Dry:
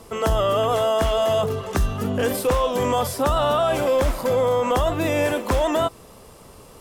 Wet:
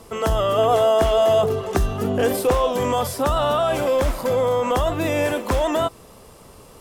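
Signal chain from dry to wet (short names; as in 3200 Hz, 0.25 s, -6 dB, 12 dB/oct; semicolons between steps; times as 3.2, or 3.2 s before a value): 0.58–2.73 small resonant body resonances 380/710 Hz, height 7 dB, ringing for 25 ms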